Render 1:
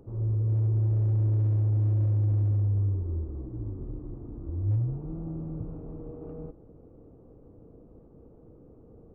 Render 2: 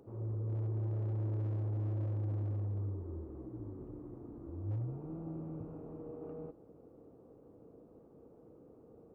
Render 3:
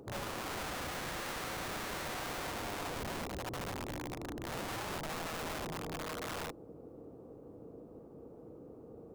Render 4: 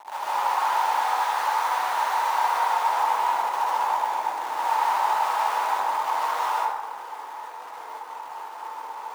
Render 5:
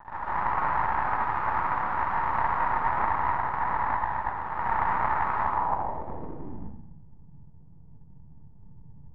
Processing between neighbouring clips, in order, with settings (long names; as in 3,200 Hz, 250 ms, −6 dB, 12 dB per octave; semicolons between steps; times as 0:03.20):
high-pass filter 330 Hz 6 dB per octave; level −1 dB
wrap-around overflow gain 41.5 dB; level +6.5 dB
bit-depth reduction 8 bits, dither none; high-pass with resonance 890 Hz, resonance Q 9.8; dense smooth reverb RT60 1.3 s, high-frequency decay 0.45×, pre-delay 115 ms, DRR −7.5 dB
half-wave rectification; low-pass filter sweep 1,300 Hz → 150 Hz, 0:05.40–0:07.00; highs frequency-modulated by the lows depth 0.29 ms; level −2.5 dB